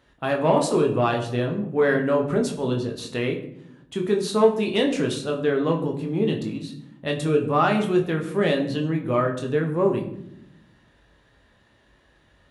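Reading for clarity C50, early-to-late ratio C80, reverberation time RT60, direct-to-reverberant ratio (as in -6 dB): 9.0 dB, 12.5 dB, 0.75 s, 1.0 dB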